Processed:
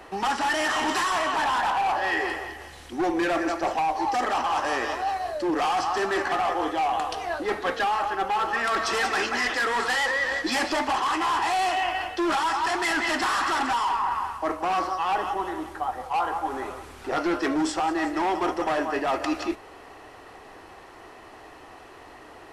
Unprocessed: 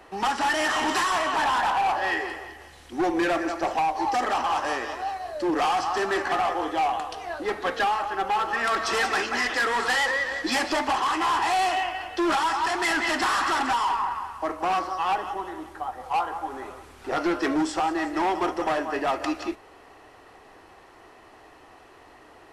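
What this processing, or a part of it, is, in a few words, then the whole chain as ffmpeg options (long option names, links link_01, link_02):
compression on the reversed sound: -af "areverse,acompressor=threshold=-27dB:ratio=6,areverse,volume=4.5dB"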